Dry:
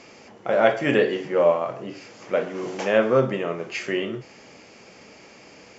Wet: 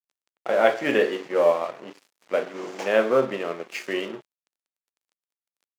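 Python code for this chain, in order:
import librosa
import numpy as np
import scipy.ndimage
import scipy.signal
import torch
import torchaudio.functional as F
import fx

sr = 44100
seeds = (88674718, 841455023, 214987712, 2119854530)

y = fx.high_shelf(x, sr, hz=5900.0, db=-2.0)
y = np.sign(y) * np.maximum(np.abs(y) - 10.0 ** (-38.0 / 20.0), 0.0)
y = scipy.signal.sosfilt(scipy.signal.butter(2, 250.0, 'highpass', fs=sr, output='sos'), y)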